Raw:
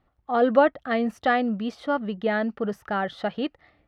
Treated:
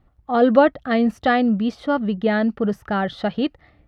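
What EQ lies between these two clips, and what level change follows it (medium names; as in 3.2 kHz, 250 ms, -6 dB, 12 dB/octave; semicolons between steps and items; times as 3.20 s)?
bass shelf 240 Hz +11 dB; dynamic bell 4.2 kHz, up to +5 dB, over -46 dBFS, Q 1.4; +2.0 dB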